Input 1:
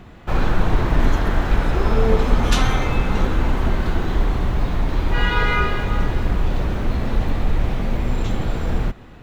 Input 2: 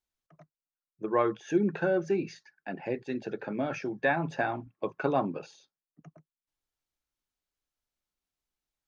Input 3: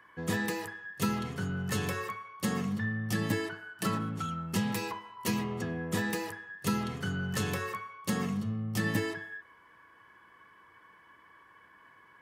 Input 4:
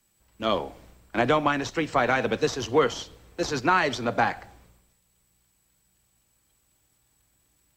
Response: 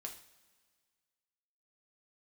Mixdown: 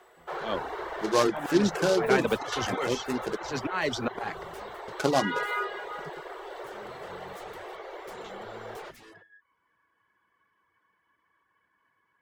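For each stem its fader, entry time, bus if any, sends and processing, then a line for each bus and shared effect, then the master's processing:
-6.5 dB, 0.00 s, no send, elliptic high-pass 380 Hz, stop band 40 dB; treble shelf 5.6 kHz -10.5 dB; band-stop 2.5 kHz, Q 8
+3.0 dB, 0.00 s, muted 3.37–4.88 s, no send, delay time shaken by noise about 4 kHz, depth 0.053 ms
-13.0 dB, 0.00 s, no send, wavefolder -32.5 dBFS; auto duck -16 dB, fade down 0.25 s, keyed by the second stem
0.0 dB, 0.00 s, no send, gain riding 0.5 s; slow attack 210 ms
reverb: none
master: reverb removal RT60 0.5 s

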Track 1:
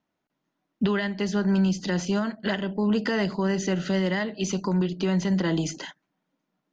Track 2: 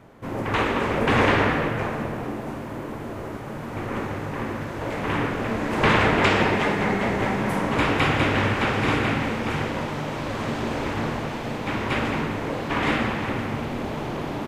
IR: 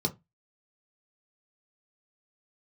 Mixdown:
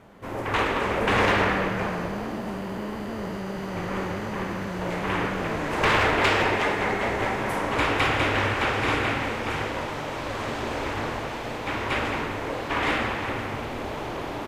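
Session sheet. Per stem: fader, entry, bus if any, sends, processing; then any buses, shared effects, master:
-6.0 dB, 0.00 s, no send, spectral blur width 1110 ms
0.0 dB, 0.00 s, no send, peaking EQ 180 Hz -10.5 dB 1.2 oct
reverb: none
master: one-sided clip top -17 dBFS

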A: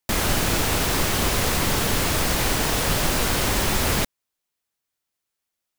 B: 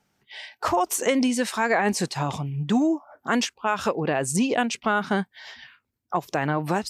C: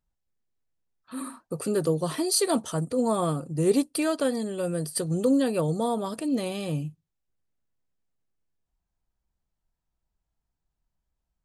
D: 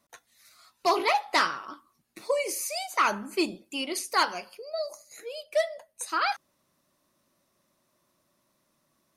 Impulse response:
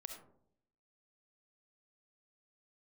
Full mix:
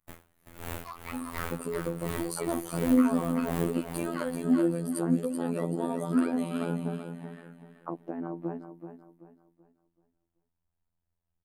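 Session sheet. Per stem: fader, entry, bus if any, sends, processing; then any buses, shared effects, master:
-10.5 dB, 0.00 s, no send, echo send -7 dB, logarithmic tremolo 1.4 Hz, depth 39 dB
+1.5 dB, 1.75 s, no send, echo send -9.5 dB, auto-wah 270–1800 Hz, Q 2.6, down, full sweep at -26 dBFS; high-pass 170 Hz
-1.0 dB, 0.00 s, no send, echo send -8 dB, compression, threshold -26 dBFS, peak gain reduction 9.5 dB
-6.0 dB, 0.00 s, no send, echo send -5 dB, high-pass 1.2 kHz 24 dB/octave; peaking EQ 3.2 kHz -7 dB 2.4 oct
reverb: none
echo: feedback delay 382 ms, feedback 34%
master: peaking EQ 5.2 kHz -12.5 dB 1.3 oct; robot voice 84.7 Hz

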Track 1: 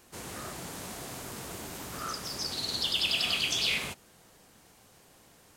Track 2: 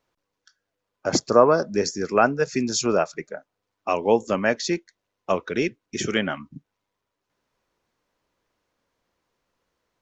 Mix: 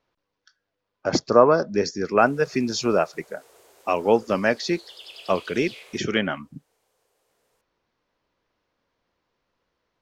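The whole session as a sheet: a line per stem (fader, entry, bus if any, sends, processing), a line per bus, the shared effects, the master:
-14.5 dB, 2.05 s, no send, resonant low shelf 310 Hz -13 dB, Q 3
+0.5 dB, 0.00 s, no send, low-pass 5.5 kHz 24 dB/octave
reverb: none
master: none

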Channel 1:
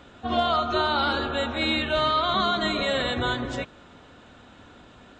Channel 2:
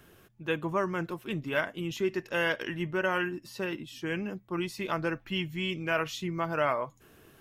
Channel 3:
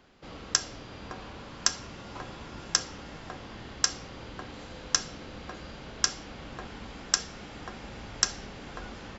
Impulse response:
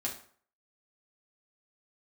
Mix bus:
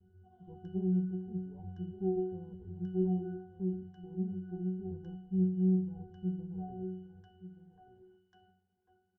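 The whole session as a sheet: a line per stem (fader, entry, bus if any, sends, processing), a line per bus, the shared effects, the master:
-9.5 dB, 0.00 s, no send, echo send -14 dB, compression 1.5:1, threshold -44 dBFS, peak gain reduction 9 dB; auto duck -10 dB, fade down 1.35 s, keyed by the second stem
+1.5 dB, 0.00 s, no send, echo send -14.5 dB, comb filter that takes the minimum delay 0.52 ms; steep low-pass 1 kHz 72 dB/octave; tilt EQ -4 dB/octave
-6.5 dB, 0.10 s, no send, no echo send, bass shelf 95 Hz -9.5 dB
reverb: none
echo: delay 1180 ms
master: gate -47 dBFS, range -10 dB; treble shelf 3.5 kHz -10 dB; pitch-class resonator F#, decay 0.65 s

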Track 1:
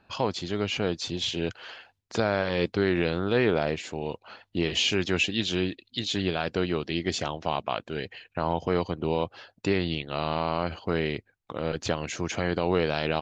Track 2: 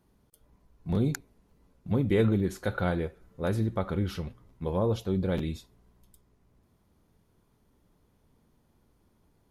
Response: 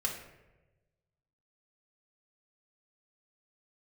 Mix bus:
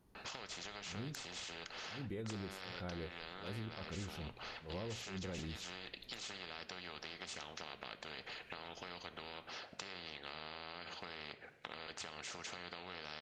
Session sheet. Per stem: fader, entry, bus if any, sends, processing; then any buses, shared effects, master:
-1.5 dB, 0.15 s, send -8.5 dB, compression, threshold -33 dBFS, peak gain reduction 14 dB; band-pass filter 1.2 kHz, Q 0.51; spectrum-flattening compressor 4:1
-2.5 dB, 0.00 s, no send, compression, threshold -30 dBFS, peak gain reduction 10.5 dB; attacks held to a fixed rise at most 180 dB/s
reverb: on, RT60 1.1 s, pre-delay 4 ms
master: compression 2:1, threshold -47 dBFS, peak gain reduction 8.5 dB

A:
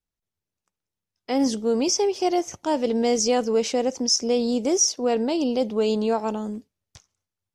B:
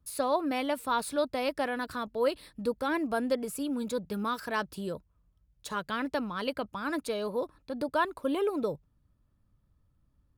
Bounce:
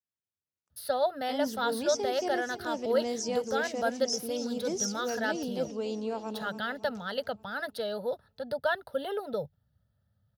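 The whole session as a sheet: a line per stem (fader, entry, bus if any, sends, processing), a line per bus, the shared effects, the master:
-12.0 dB, 0.00 s, no send, echo send -12 dB, none
+2.5 dB, 0.70 s, no send, no echo send, static phaser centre 1.6 kHz, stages 8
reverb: none
echo: feedback delay 283 ms, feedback 53%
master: high-pass 73 Hz 24 dB/octave

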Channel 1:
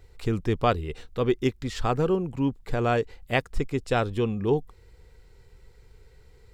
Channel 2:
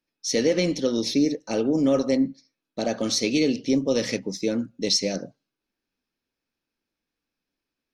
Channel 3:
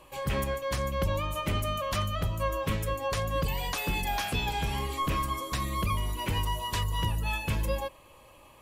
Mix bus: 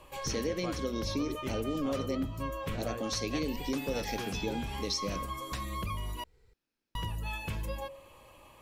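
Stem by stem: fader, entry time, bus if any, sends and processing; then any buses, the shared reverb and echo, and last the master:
-10.5 dB, 0.00 s, no send, none
-3.0 dB, 0.00 s, no send, none
-1.0 dB, 0.00 s, muted 6.24–6.95 s, no send, peaking EQ 11 kHz -2.5 dB 0.77 oct; de-hum 136.9 Hz, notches 5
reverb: none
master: compression 2:1, threshold -37 dBFS, peak gain reduction 10.5 dB

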